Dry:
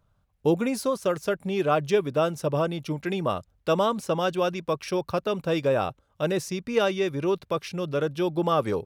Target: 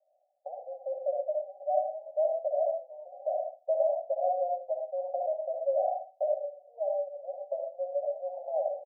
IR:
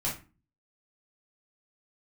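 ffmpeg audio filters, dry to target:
-filter_complex "[0:a]acompressor=threshold=0.0224:ratio=4,asuperpass=centerf=650:order=12:qfactor=2.8,aecho=1:1:11|74:0.355|0.15,asplit=2[s0][s1];[1:a]atrim=start_sample=2205,adelay=61[s2];[s1][s2]afir=irnorm=-1:irlink=0,volume=0.473[s3];[s0][s3]amix=inputs=2:normalize=0,volume=2.37"

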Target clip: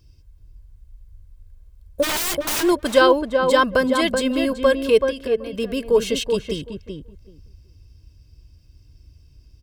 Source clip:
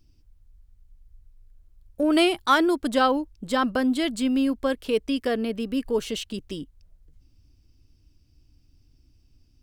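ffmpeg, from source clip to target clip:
-filter_complex "[0:a]highpass=40,lowshelf=f=110:g=4,aecho=1:1:1.9:0.57,asplit=3[s0][s1][s2];[s0]afade=t=out:st=2.02:d=0.02[s3];[s1]aeval=exprs='(mod(16.8*val(0)+1,2)-1)/16.8':c=same,afade=t=in:st=2.02:d=0.02,afade=t=out:st=2.62:d=0.02[s4];[s2]afade=t=in:st=2.62:d=0.02[s5];[s3][s4][s5]amix=inputs=3:normalize=0,asettb=1/sr,asplit=3[s6][s7][s8];[s6]atrim=end=5.054[s9];[s7]atrim=start=5.05:end=5.53,asetpts=PTS-STARTPTS,afade=t=in:d=0.004:c=qsin,afade=t=out:st=0.476:d=0.004:c=qsin,acompressor=threshold=0.0178:ratio=10[s10];[s8]atrim=start=5.526[s11];[s9][s10]acrossfade=d=0.004:c1=hsin:c2=qsin[s12];[s12][s11]acrossfade=d=0.004:c1=qsin:c2=hsin,asplit=2[s13][s14];[s14]adelay=380,lowpass=f=1300:p=1,volume=0.631,asplit=2[s15][s16];[s16]adelay=380,lowpass=f=1300:p=1,volume=0.16,asplit=2[s17][s18];[s18]adelay=380,lowpass=f=1300:p=1,volume=0.16[s19];[s13][s15][s17][s19]amix=inputs=4:normalize=0,volume=1.88"

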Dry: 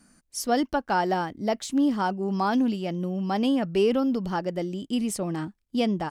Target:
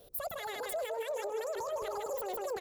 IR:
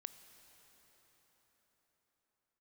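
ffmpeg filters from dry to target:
-af "dynaudnorm=f=130:g=3:m=1.58,asetrate=103194,aresample=44100,aecho=1:1:155|310|465|620:0.376|0.135|0.0487|0.0175,alimiter=level_in=2.11:limit=0.0631:level=0:latency=1:release=36,volume=0.473,equalizer=f=1900:t=o:w=1.7:g=-10,bandreject=f=60:t=h:w=6,bandreject=f=120:t=h:w=6,bandreject=f=180:t=h:w=6,bandreject=f=240:t=h:w=6,bandreject=f=300:t=h:w=6,bandreject=f=360:t=h:w=6,bandreject=f=420:t=h:w=6,bandreject=f=480:t=h:w=6,bandreject=f=540:t=h:w=6,volume=1.5"

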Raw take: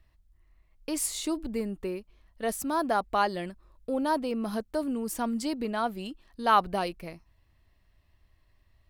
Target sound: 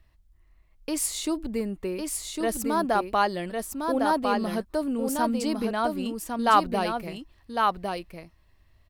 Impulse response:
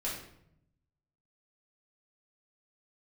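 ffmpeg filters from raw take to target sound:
-af "aecho=1:1:1105:0.631,volume=1.33"

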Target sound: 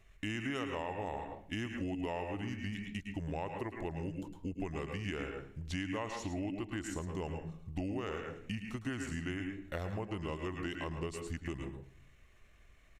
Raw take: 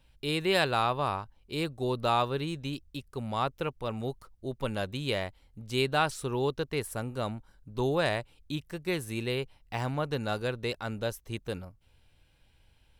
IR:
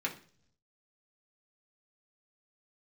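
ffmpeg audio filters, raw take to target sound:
-filter_complex "[0:a]asetrate=32097,aresample=44100,atempo=1.37395,asplit=2[s0][s1];[1:a]atrim=start_sample=2205,adelay=107[s2];[s1][s2]afir=irnorm=-1:irlink=0,volume=0.335[s3];[s0][s3]amix=inputs=2:normalize=0,acompressor=threshold=0.0141:ratio=6,volume=1.19"

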